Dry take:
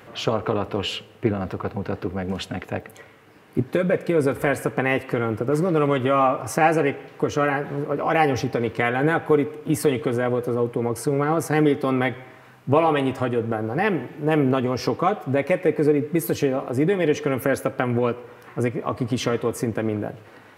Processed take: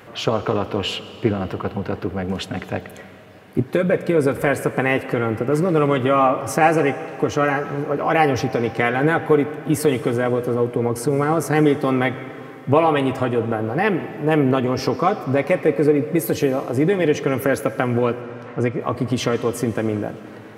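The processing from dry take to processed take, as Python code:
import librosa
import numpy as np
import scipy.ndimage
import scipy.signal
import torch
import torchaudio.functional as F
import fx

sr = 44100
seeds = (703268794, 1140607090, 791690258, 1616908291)

y = fx.lowpass(x, sr, hz=6000.0, slope=12, at=(18.21, 18.81))
y = fx.rev_freeverb(y, sr, rt60_s=3.8, hf_ratio=0.8, predelay_ms=90, drr_db=14.0)
y = F.gain(torch.from_numpy(y), 2.5).numpy()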